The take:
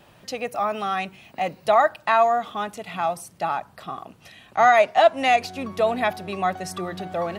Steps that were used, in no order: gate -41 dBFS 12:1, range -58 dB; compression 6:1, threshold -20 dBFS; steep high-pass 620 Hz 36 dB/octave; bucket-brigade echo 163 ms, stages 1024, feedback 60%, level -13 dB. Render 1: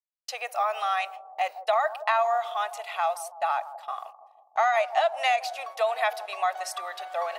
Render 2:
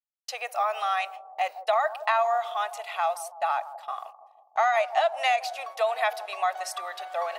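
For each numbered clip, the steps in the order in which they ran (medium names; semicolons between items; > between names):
steep high-pass > compression > gate > bucket-brigade echo; steep high-pass > gate > compression > bucket-brigade echo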